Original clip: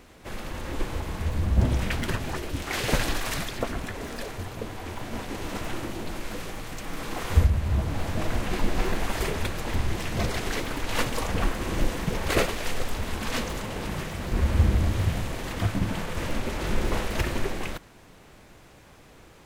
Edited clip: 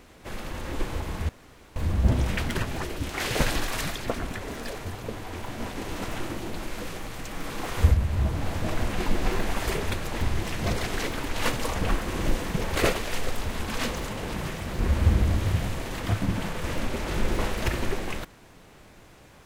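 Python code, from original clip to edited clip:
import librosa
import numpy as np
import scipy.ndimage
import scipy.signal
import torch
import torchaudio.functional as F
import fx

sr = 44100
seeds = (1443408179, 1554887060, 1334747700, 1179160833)

y = fx.edit(x, sr, fx.insert_room_tone(at_s=1.29, length_s=0.47), tone=tone)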